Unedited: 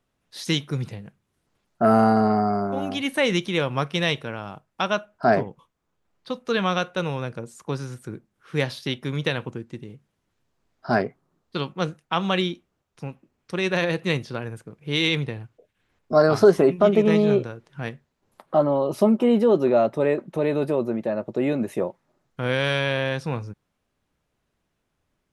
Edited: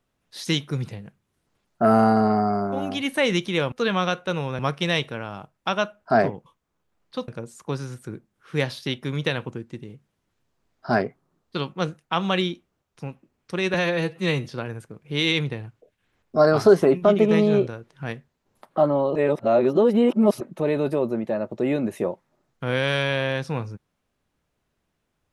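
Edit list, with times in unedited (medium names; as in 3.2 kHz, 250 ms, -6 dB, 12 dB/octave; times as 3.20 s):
6.41–7.28 s: move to 3.72 s
13.74–14.21 s: stretch 1.5×
18.92–20.17 s: reverse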